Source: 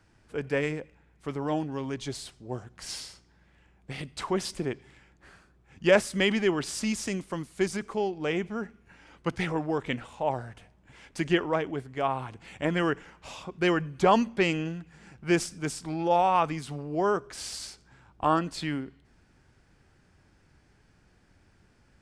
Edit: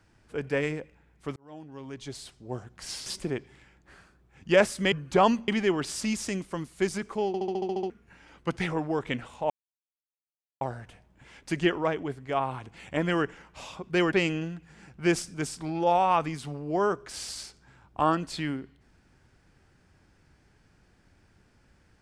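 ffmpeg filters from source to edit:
-filter_complex "[0:a]asplit=16[s0][s1][s2][s3][s4][s5][s6][s7][s8][s9][s10][s11][s12][s13][s14][s15];[s0]atrim=end=1.36,asetpts=PTS-STARTPTS,afade=t=out:st=1.356:d=0.004:c=hsin[s16];[s1]atrim=start=1.36:end=3.062,asetpts=PTS-STARTPTS,afade=t=in:d=1.2[s17];[s2]atrim=start=4.408:end=6.272[s18];[s3]atrim=start=13.798:end=14.362[s19];[s4]atrim=start=6.268:end=8.132[s20];[s5]atrim=start=8.058:end=8.132[s21];[s6]atrim=start=8.058:end=8.132[s22];[s7]atrim=start=8.058:end=8.132[s23];[s8]atrim=start=8.058:end=8.132[s24];[s9]atrim=start=8.058:end=8.132[s25];[s10]atrim=start=8.058:end=8.132[s26];[s11]atrim=start=8.058:end=8.132[s27];[s12]atrim=start=8.058:end=8.132[s28];[s13]atrim=start=8.688:end=10.29,asetpts=PTS-STARTPTS,afade=t=out:st=1.598:d=0.004:c=hsin,apad=pad_dur=1.11[s29];[s14]atrim=start=10.29:end=13.802,asetpts=PTS-STARTPTS,afade=t=in:d=0.004:c=hsin[s30];[s15]atrim=start=14.358[s31];[s16][s17]concat=n=2:v=0:a=1[s32];[s32][s18]acrossfade=d=0.004:c1=hsin:c2=hsin[s33];[s33][s19]acrossfade=d=0.004:c1=hsin:c2=hsin[s34];[s34][s20]acrossfade=d=0.004:c1=hsin:c2=hsin[s35];[s35][s21]acrossfade=d=0.004:c1=hsin:c2=hsin[s36];[s36][s22]acrossfade=d=0.004:c1=hsin:c2=hsin[s37];[s37][s23]acrossfade=d=0.004:c1=hsin:c2=hsin[s38];[s38][s24]acrossfade=d=0.004:c1=hsin:c2=hsin[s39];[s39][s25]acrossfade=d=0.004:c1=hsin:c2=hsin[s40];[s40][s26]acrossfade=d=0.004:c1=hsin:c2=hsin[s41];[s41][s27]acrossfade=d=0.004:c1=hsin:c2=hsin[s42];[s42][s28]acrossfade=d=0.004:c1=hsin:c2=hsin[s43];[s29][s30]concat=n=2:v=0:a=1[s44];[s43][s44]acrossfade=d=0.004:c1=hsin:c2=hsin[s45];[s45][s31]acrossfade=d=0.004:c1=hsin:c2=hsin"

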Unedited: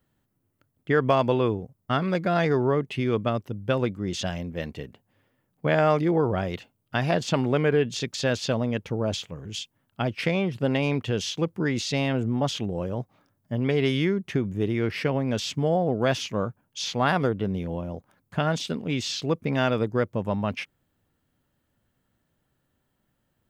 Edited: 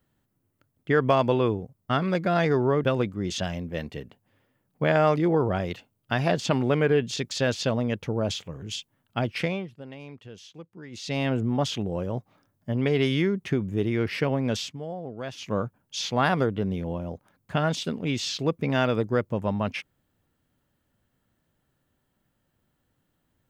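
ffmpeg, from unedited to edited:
-filter_complex "[0:a]asplit=6[s0][s1][s2][s3][s4][s5];[s0]atrim=end=2.842[s6];[s1]atrim=start=3.668:end=10.56,asetpts=PTS-STARTPTS,afade=t=out:st=6.522:d=0.37:silence=0.133352[s7];[s2]atrim=start=10.56:end=11.73,asetpts=PTS-STARTPTS,volume=0.133[s8];[s3]atrim=start=11.73:end=15.56,asetpts=PTS-STARTPTS,afade=t=in:d=0.37:silence=0.133352,afade=t=out:st=3.69:d=0.14:silence=0.251189[s9];[s4]atrim=start=15.56:end=16.2,asetpts=PTS-STARTPTS,volume=0.251[s10];[s5]atrim=start=16.2,asetpts=PTS-STARTPTS,afade=t=in:d=0.14:silence=0.251189[s11];[s7][s8][s9][s10][s11]concat=n=5:v=0:a=1[s12];[s6][s12]acrossfade=d=0.004:c1=hsin:c2=hsin"

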